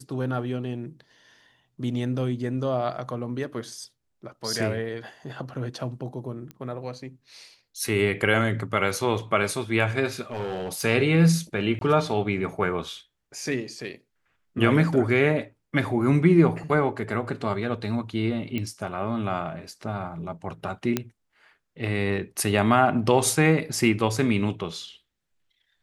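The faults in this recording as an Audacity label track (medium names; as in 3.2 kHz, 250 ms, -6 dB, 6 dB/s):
6.510000	6.510000	pop -25 dBFS
10.310000	10.850000	clipped -26 dBFS
11.790000	11.810000	dropout 22 ms
18.580000	18.580000	pop -17 dBFS
20.970000	20.970000	pop -9 dBFS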